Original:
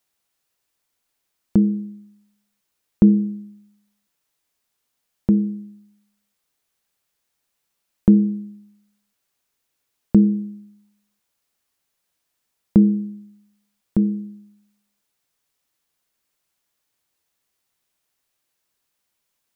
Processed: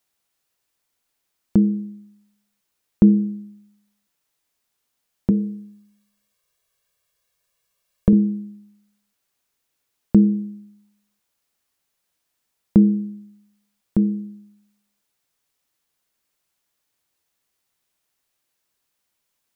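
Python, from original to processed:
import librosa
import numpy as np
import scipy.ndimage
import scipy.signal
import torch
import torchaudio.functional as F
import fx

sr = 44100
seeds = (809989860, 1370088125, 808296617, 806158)

y = fx.comb(x, sr, ms=1.8, depth=0.78, at=(5.3, 8.13))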